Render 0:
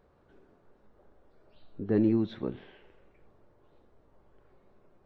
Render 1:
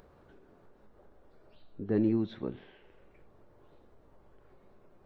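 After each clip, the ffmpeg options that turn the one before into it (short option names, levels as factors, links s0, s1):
-af "acompressor=mode=upward:threshold=0.00398:ratio=2.5,volume=0.75"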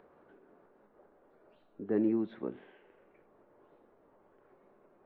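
-filter_complex "[0:a]acrossover=split=190 2700:gain=0.112 1 0.0794[s0][s1][s2];[s0][s1][s2]amix=inputs=3:normalize=0"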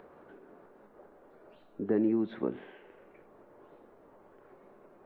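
-af "acompressor=threshold=0.0224:ratio=2.5,volume=2.24"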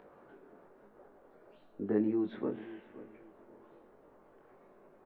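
-filter_complex "[0:a]flanger=delay=19:depth=4.4:speed=1,asplit=2[s0][s1];[s1]adelay=526,lowpass=f=2000:p=1,volume=0.158,asplit=2[s2][s3];[s3]adelay=526,lowpass=f=2000:p=1,volume=0.3,asplit=2[s4][s5];[s5]adelay=526,lowpass=f=2000:p=1,volume=0.3[s6];[s0][s2][s4][s6]amix=inputs=4:normalize=0"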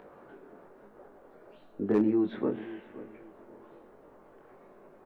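-af "volume=14.1,asoftclip=hard,volume=0.0708,volume=1.88"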